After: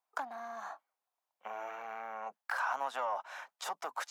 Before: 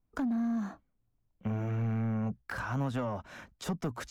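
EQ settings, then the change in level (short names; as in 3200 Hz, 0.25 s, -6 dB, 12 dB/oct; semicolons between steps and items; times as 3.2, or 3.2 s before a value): ladder high-pass 680 Hz, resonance 45%; +9.5 dB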